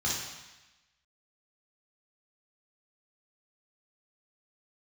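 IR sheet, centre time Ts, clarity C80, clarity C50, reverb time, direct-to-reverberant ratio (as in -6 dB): 68 ms, 4.0 dB, 0.5 dB, 1.0 s, -6.0 dB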